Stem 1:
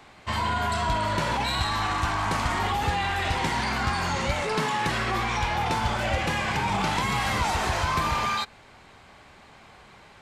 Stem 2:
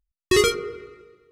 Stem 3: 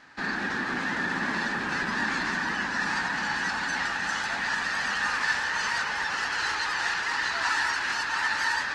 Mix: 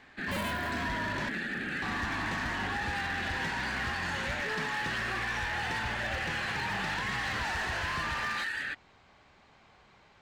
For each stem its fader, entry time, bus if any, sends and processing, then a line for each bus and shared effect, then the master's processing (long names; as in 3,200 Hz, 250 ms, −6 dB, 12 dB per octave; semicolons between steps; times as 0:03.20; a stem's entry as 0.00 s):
−9.5 dB, 0.00 s, muted 0:01.29–0:01.82, no bus, no send, low-pass filter 7,000 Hz 24 dB per octave
−6.5 dB, 0.00 s, bus A, no send, sub-harmonics by changed cycles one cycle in 2, inverted
−2.0 dB, 0.00 s, bus A, no send, no processing
bus A: 0.0 dB, phaser with its sweep stopped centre 2,400 Hz, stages 4; brickwall limiter −25.5 dBFS, peak gain reduction 10 dB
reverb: not used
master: gain into a clipping stage and back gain 28.5 dB